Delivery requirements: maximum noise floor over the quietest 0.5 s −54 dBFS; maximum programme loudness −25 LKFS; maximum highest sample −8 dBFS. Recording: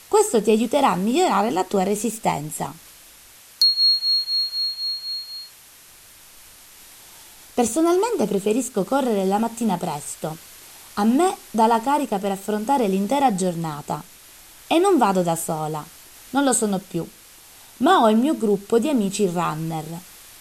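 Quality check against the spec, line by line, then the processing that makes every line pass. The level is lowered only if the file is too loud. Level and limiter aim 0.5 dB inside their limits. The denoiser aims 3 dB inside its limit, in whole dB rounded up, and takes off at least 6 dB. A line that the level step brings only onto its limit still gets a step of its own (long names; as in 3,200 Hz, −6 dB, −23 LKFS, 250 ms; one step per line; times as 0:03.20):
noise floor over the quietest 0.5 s −48 dBFS: out of spec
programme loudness −21.0 LKFS: out of spec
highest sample −6.0 dBFS: out of spec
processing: broadband denoise 6 dB, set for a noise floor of −48 dBFS
level −4.5 dB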